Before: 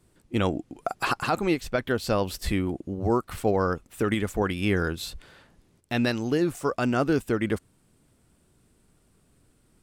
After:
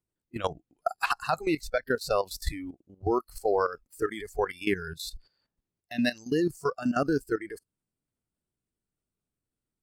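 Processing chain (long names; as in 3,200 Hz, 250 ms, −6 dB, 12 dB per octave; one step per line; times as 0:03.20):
noise reduction from a noise print of the clip's start 21 dB
output level in coarse steps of 13 dB
floating-point word with a short mantissa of 8 bits
level +2 dB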